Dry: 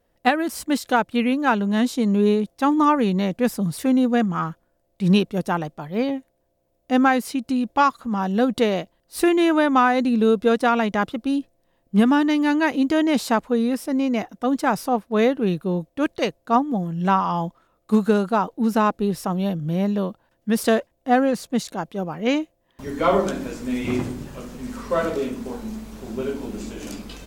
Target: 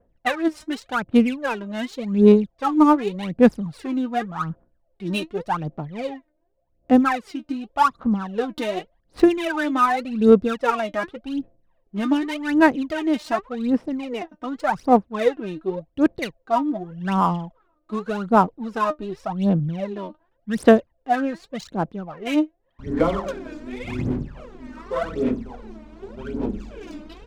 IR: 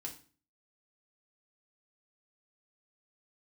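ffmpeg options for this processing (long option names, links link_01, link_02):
-af "adynamicequalizer=threshold=0.00794:dfrequency=4700:dqfactor=1.8:tfrequency=4700:tqfactor=1.8:attack=5:release=100:ratio=0.375:range=1.5:mode=cutabove:tftype=bell,aphaser=in_gain=1:out_gain=1:delay=3.3:decay=0.8:speed=0.87:type=sinusoidal,adynamicsmooth=sensitivity=3.5:basefreq=2200,volume=-6.5dB"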